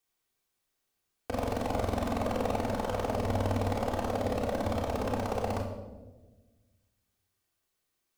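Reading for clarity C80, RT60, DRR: 7.0 dB, 1.2 s, -6.0 dB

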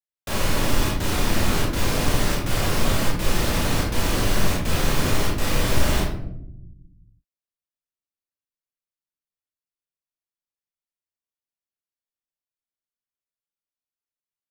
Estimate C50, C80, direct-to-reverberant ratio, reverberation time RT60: 1.5 dB, 6.5 dB, -4.0 dB, 0.80 s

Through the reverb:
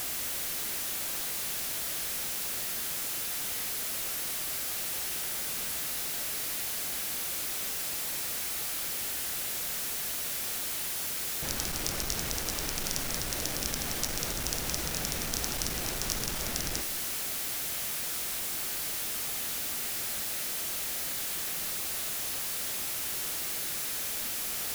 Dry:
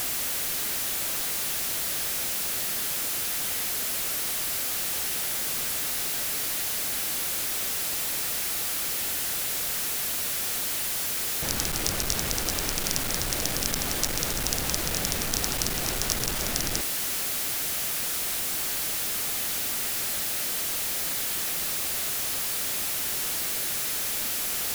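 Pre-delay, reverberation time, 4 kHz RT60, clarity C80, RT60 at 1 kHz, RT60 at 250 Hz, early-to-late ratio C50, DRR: 6 ms, 1.4 s, 1.3 s, 12.0 dB, 1.4 s, 1.4 s, 10.5 dB, 8.5 dB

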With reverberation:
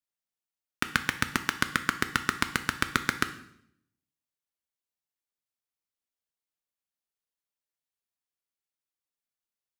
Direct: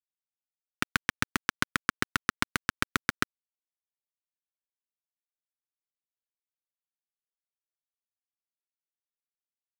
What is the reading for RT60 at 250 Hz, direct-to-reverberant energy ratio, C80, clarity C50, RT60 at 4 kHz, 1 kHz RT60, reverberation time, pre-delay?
0.90 s, 9.0 dB, 15.5 dB, 12.5 dB, 0.65 s, 0.65 s, 0.70 s, 11 ms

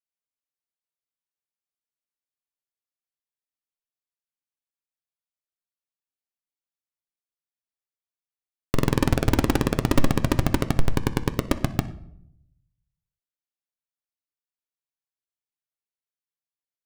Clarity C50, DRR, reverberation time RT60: 14.5 dB, 8.0 dB, 0.70 s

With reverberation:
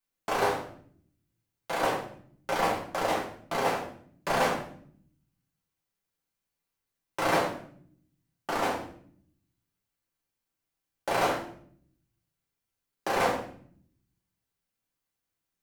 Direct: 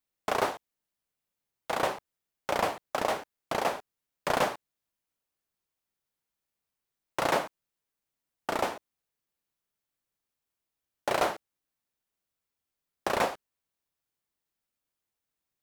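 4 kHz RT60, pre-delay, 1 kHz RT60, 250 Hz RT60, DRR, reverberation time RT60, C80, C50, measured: 0.50 s, 5 ms, 0.50 s, 1.1 s, -5.0 dB, 0.55 s, 9.5 dB, 5.5 dB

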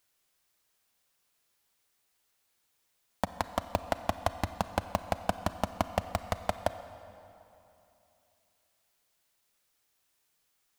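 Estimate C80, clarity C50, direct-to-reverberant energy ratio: 12.0 dB, 11.5 dB, 11.0 dB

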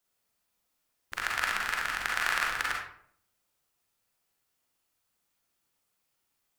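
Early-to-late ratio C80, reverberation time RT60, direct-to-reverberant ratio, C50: 6.5 dB, 0.60 s, -2.5 dB, 1.5 dB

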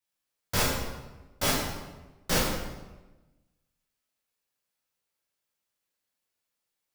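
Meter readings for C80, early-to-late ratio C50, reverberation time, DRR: 4.0 dB, 1.5 dB, 1.2 s, -6.5 dB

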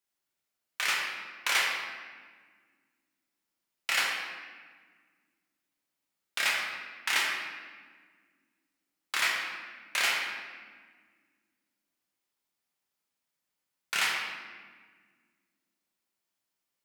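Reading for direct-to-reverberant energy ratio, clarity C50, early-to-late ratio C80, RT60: -3.5 dB, 1.0 dB, 3.0 dB, 1.6 s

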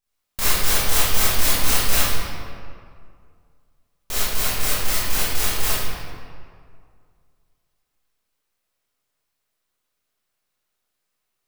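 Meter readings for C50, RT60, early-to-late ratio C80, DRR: -5.0 dB, 2.2 s, -1.5 dB, -12.0 dB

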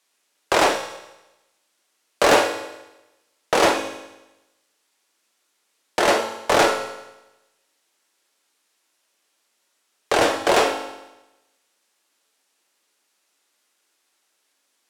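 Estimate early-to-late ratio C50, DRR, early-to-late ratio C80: 8.0 dB, 4.5 dB, 10.5 dB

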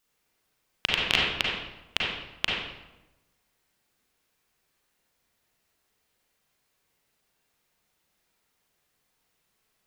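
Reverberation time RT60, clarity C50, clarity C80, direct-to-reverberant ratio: 1.0 s, -1.5 dB, 2.0 dB, -4.5 dB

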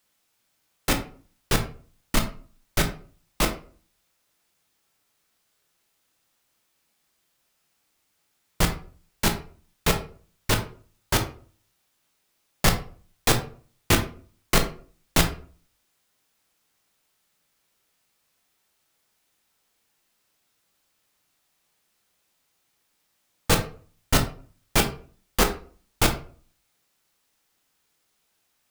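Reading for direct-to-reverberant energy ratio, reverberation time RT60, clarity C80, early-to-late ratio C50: 4.0 dB, 0.45 s, 15.0 dB, 10.5 dB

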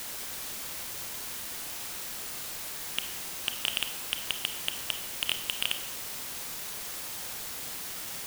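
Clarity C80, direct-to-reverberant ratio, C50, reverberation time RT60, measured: 11.5 dB, 8.5 dB, 10.0 dB, 1.1 s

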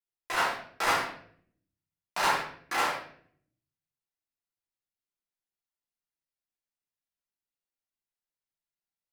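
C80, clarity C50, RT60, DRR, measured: 7.5 dB, 3.5 dB, 0.60 s, -9.0 dB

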